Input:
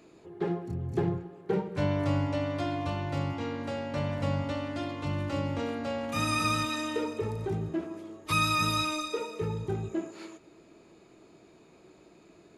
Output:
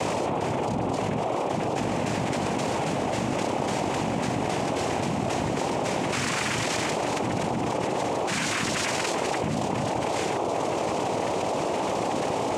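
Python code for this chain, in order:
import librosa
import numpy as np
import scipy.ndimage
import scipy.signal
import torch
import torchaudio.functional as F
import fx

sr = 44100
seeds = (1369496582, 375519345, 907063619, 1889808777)

y = fx.bin_compress(x, sr, power=0.4)
y = fx.dereverb_blind(y, sr, rt60_s=1.6)
y = y + 10.0 ** (-33.0 / 20.0) * np.sin(2.0 * np.pi * 500.0 * np.arange(len(y)) / sr)
y = fx.noise_vocoder(y, sr, seeds[0], bands=4)
y = fx.env_flatten(y, sr, amount_pct=100)
y = y * librosa.db_to_amplitude(-5.0)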